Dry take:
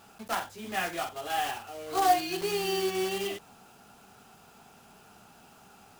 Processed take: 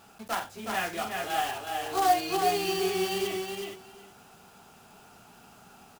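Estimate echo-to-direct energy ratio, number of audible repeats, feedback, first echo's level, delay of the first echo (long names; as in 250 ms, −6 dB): −4.0 dB, 2, 15%, −4.0 dB, 369 ms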